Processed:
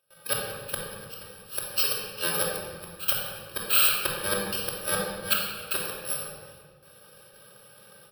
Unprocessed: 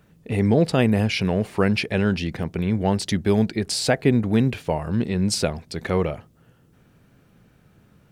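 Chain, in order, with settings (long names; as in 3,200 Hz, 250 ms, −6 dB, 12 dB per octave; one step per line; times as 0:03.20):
samples in bit-reversed order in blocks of 64 samples
high-pass filter 430 Hz 12 dB per octave
noise gate with hold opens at −47 dBFS
downward compressor 12 to 1, threshold −24 dBFS, peak gain reduction 11 dB
gate with flip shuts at −16 dBFS, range −26 dB
phaser with its sweep stopped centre 1,400 Hz, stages 8
echo with shifted repeats 89 ms, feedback 52%, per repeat −72 Hz, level −18.5 dB
rectangular room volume 1,600 cubic metres, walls mixed, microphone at 2.8 metres
level +9 dB
MP3 80 kbit/s 44,100 Hz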